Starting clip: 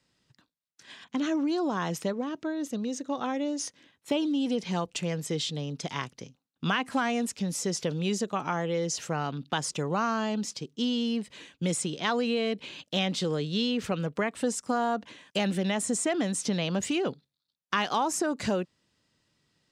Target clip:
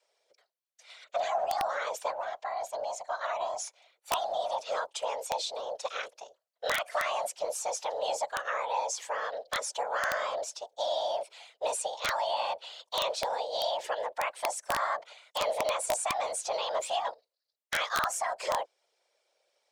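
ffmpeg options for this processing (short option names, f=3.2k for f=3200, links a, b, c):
-af "afreqshift=400,afftfilt=real='hypot(re,im)*cos(2*PI*random(0))':imag='hypot(re,im)*sin(2*PI*random(1))':win_size=512:overlap=0.75,aeval=exprs='(mod(13.3*val(0)+1,2)-1)/13.3':c=same,volume=3dB"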